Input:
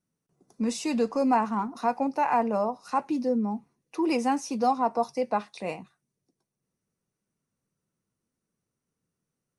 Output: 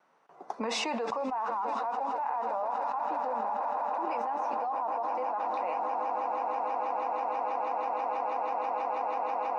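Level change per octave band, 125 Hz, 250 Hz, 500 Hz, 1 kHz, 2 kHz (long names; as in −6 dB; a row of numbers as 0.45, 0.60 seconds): below −15 dB, −14.5 dB, −3.5 dB, +1.0 dB, −2.0 dB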